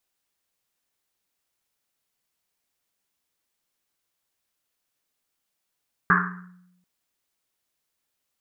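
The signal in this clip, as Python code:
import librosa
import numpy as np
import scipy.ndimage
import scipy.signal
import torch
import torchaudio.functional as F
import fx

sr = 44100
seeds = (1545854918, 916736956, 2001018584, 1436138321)

y = fx.risset_drum(sr, seeds[0], length_s=0.74, hz=180.0, decay_s=1.01, noise_hz=1400.0, noise_width_hz=670.0, noise_pct=65)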